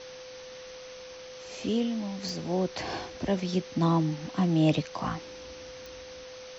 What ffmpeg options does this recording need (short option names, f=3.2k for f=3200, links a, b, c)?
-af "adeclick=t=4,bandreject=f=510:w=30,afwtdn=0.0063"